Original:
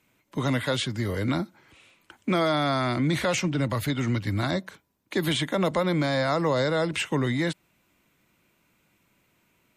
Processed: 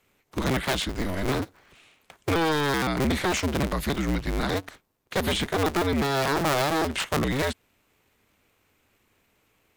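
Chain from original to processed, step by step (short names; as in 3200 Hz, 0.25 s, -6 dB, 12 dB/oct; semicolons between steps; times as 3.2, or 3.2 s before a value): cycle switcher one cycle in 2, inverted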